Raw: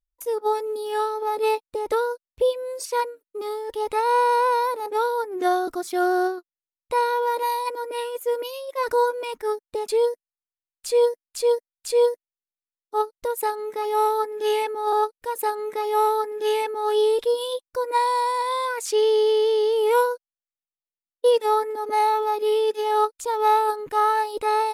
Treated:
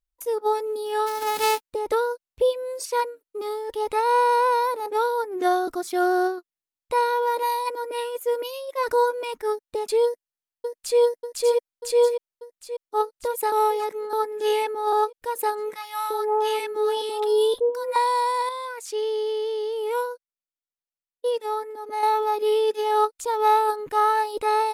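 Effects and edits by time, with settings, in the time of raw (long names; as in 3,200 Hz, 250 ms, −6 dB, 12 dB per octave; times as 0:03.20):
0:01.06–0:01.71: spectral envelope flattened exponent 0.3
0:10.05–0:10.99: delay throw 590 ms, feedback 65%, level −4.5 dB
0:13.52–0:14.13: reverse
0:15.75–0:17.96: multiband delay without the direct sound highs, lows 350 ms, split 990 Hz
0:18.49–0:22.03: clip gain −7 dB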